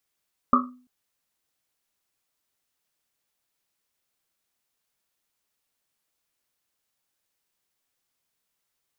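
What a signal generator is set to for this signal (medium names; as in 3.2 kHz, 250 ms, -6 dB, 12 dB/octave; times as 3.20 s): Risset drum length 0.34 s, pitch 250 Hz, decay 0.46 s, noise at 1.2 kHz, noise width 210 Hz, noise 55%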